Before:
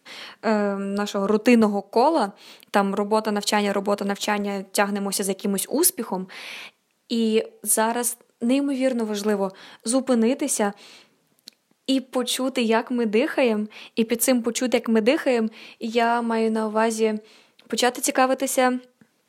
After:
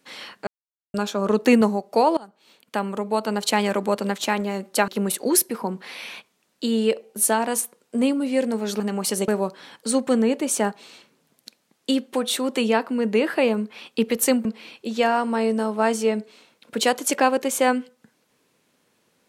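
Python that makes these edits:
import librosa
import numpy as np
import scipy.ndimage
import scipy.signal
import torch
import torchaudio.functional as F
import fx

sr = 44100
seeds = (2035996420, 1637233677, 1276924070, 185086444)

y = fx.edit(x, sr, fx.silence(start_s=0.47, length_s=0.47),
    fx.fade_in_from(start_s=2.17, length_s=1.31, floor_db=-23.0),
    fx.move(start_s=4.88, length_s=0.48, to_s=9.28),
    fx.cut(start_s=14.45, length_s=0.97), tone=tone)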